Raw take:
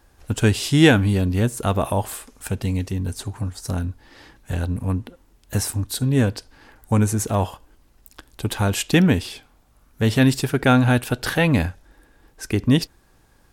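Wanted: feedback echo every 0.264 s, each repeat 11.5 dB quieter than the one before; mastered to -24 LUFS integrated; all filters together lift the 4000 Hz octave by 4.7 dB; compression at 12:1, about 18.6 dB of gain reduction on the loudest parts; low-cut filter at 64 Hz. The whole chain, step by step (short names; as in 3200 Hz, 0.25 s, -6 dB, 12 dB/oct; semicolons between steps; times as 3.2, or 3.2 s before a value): HPF 64 Hz; bell 4000 Hz +6 dB; compressor 12:1, threshold -27 dBFS; feedback echo 0.264 s, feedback 27%, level -11.5 dB; gain +8 dB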